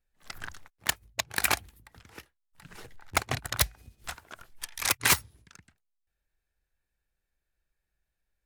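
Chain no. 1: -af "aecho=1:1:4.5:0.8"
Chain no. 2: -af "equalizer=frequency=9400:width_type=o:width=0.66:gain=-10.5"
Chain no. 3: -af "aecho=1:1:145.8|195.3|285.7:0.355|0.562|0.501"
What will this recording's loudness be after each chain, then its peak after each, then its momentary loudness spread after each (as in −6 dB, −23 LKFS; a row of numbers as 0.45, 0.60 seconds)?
−26.5, −30.0, −27.0 LKFS; −10.0, −13.0, −10.5 dBFS; 19, 19, 19 LU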